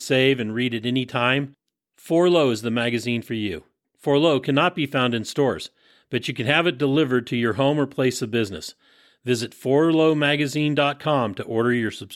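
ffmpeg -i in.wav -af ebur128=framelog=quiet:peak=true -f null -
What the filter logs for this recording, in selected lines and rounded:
Integrated loudness:
  I:         -21.6 LUFS
  Threshold: -32.1 LUFS
Loudness range:
  LRA:         1.5 LU
  Threshold: -42.3 LUFS
  LRA low:   -23.0 LUFS
  LRA high:  -21.5 LUFS
True peak:
  Peak:       -3.9 dBFS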